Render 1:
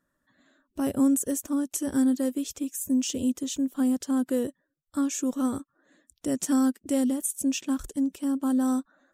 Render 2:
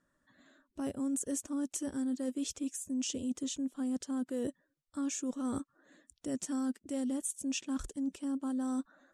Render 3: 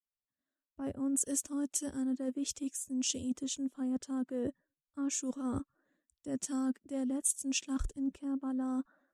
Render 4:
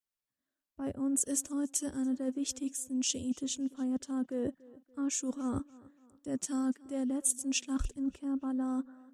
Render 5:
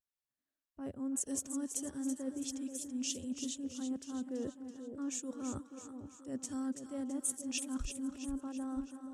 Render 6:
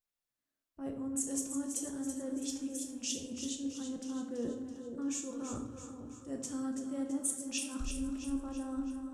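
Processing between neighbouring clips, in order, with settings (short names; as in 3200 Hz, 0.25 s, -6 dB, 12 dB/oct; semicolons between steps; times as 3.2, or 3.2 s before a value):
LPF 9800 Hz 24 dB/oct; reverse; compressor, threshold -33 dBFS, peak gain reduction 13.5 dB; reverse
three-band expander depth 100%
tape echo 0.288 s, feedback 49%, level -20.5 dB, low-pass 3700 Hz; gain +1.5 dB
vibrato 0.61 Hz 37 cents; split-band echo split 870 Hz, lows 0.481 s, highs 0.331 s, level -8 dB; gain -6 dB
shoebox room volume 210 m³, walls mixed, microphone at 0.81 m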